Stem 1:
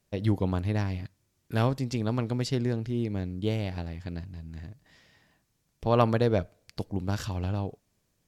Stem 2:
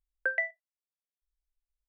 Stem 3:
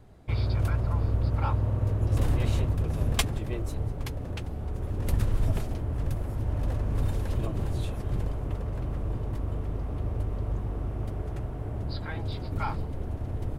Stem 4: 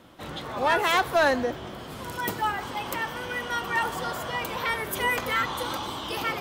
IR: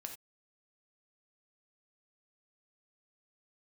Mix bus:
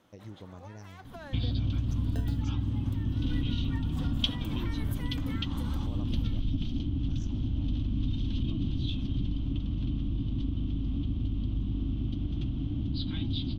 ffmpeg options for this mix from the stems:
-filter_complex "[0:a]equalizer=f=3.5k:w=1.5:g=-12,acompressor=threshold=-28dB:ratio=2,volume=-16dB,asplit=2[a][b];[1:a]acrusher=samples=39:mix=1:aa=0.000001,adelay=1900,volume=-9dB[c];[2:a]firequalizer=gain_entry='entry(110,0);entry(280,11);entry(420,-20);entry(1200,-13);entry(1800,-17);entry(3200,12);entry(6500,-28);entry(9500,-11)':delay=0.05:min_phase=1,adelay=1050,volume=2.5dB,asplit=2[d][e];[e]volume=-13dB[f];[3:a]acompressor=threshold=-33dB:ratio=12,volume=-8.5dB,asplit=2[g][h];[h]volume=-16dB[i];[b]apad=whole_len=282678[j];[g][j]sidechaincompress=threshold=-51dB:ratio=12:attack=9.3:release=137[k];[c][k]amix=inputs=2:normalize=0,agate=range=-6dB:threshold=-48dB:ratio=16:detection=peak,acompressor=threshold=-44dB:ratio=6,volume=0dB[l];[a][d]amix=inputs=2:normalize=0,lowpass=f=6.2k:t=q:w=12,acompressor=threshold=-29dB:ratio=6,volume=0dB[m];[4:a]atrim=start_sample=2205[n];[f][i]amix=inputs=2:normalize=0[o];[o][n]afir=irnorm=-1:irlink=0[p];[l][m][p]amix=inputs=3:normalize=0"

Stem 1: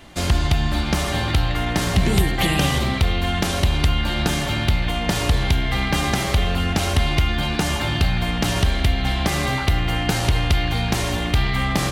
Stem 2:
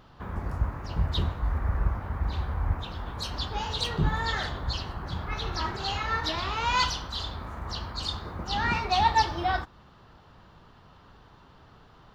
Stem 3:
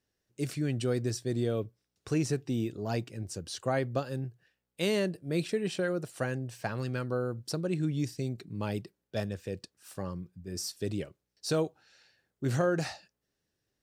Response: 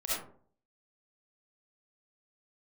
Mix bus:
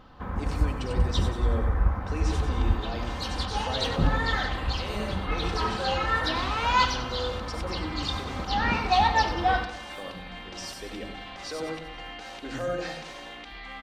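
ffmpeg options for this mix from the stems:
-filter_complex "[0:a]alimiter=limit=-14.5dB:level=0:latency=1:release=38,adelay=2100,volume=-14.5dB,asplit=2[a][b];[b]volume=-20dB[c];[1:a]highshelf=f=4.8k:g=-7,volume=2dB,asplit=2[d][e];[e]volume=-12.5dB[f];[2:a]volume=0.5dB,asplit=3[g][h][i];[h]volume=-16dB[j];[i]volume=-11.5dB[k];[a][g]amix=inputs=2:normalize=0,highpass=400,lowpass=5.1k,alimiter=level_in=4.5dB:limit=-24dB:level=0:latency=1:release=55,volume=-4.5dB,volume=0dB[l];[3:a]atrim=start_sample=2205[m];[c][j]amix=inputs=2:normalize=0[n];[n][m]afir=irnorm=-1:irlink=0[o];[f][k]amix=inputs=2:normalize=0,aecho=0:1:94|188|282|376|470|564|658:1|0.49|0.24|0.118|0.0576|0.0282|0.0138[p];[d][l][o][p]amix=inputs=4:normalize=0,aecho=1:1:3.9:0.39"

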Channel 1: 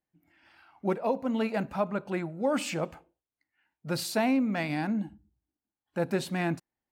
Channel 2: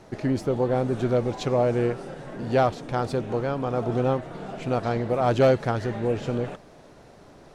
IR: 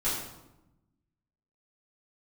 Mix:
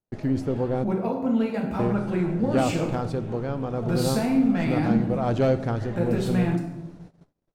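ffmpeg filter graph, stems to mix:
-filter_complex "[0:a]acompressor=threshold=-31dB:ratio=8,volume=-1dB,asplit=2[a][b];[b]volume=-5dB[c];[1:a]volume=-6.5dB,asplit=3[d][e][f];[d]atrim=end=0.84,asetpts=PTS-STARTPTS,afade=t=out:st=0.836:d=0.004:c=hsin[g];[e]atrim=start=0.84:end=1.79,asetpts=PTS-STARTPTS,volume=0[h];[f]atrim=start=1.79,asetpts=PTS-STARTPTS,afade=t=in:d=0.004:c=hsin[i];[g][h][i]concat=n=3:v=0:a=1,asplit=2[j][k];[k]volume=-19.5dB[l];[2:a]atrim=start_sample=2205[m];[c][l]amix=inputs=2:normalize=0[n];[n][m]afir=irnorm=-1:irlink=0[o];[a][j][o]amix=inputs=3:normalize=0,agate=range=-40dB:threshold=-49dB:ratio=16:detection=peak,lowshelf=f=280:g=9"

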